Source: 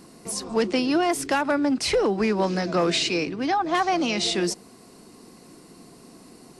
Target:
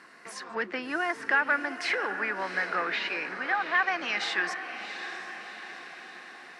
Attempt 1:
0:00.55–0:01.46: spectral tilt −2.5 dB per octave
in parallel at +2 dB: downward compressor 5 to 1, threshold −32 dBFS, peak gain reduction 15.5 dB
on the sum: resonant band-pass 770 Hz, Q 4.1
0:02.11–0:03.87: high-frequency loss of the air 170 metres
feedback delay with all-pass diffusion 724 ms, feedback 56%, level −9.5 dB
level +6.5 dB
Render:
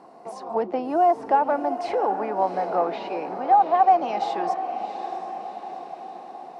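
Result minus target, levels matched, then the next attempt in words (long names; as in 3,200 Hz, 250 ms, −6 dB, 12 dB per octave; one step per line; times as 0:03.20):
2,000 Hz band −20.0 dB
0:00.55–0:01.46: spectral tilt −2.5 dB per octave
in parallel at +2 dB: downward compressor 5 to 1, threshold −32 dBFS, peak gain reduction 15.5 dB
on the sum: resonant band-pass 1,700 Hz, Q 4.1
0:02.11–0:03.87: high-frequency loss of the air 170 metres
feedback delay with all-pass diffusion 724 ms, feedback 56%, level −9.5 dB
level +6.5 dB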